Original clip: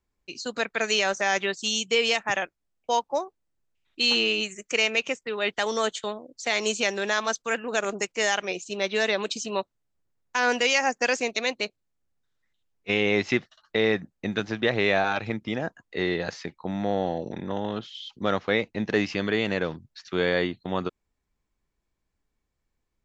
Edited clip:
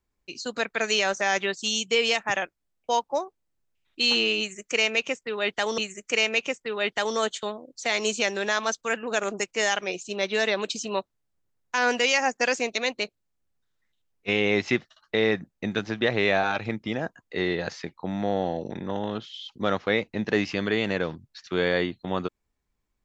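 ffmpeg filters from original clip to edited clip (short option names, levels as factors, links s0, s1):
-filter_complex "[0:a]asplit=2[s0][s1];[s0]atrim=end=5.782[s2];[s1]atrim=start=4.388[s3];[s2][s3]acrossfade=d=0.004:c1=hsin:c2=hsin"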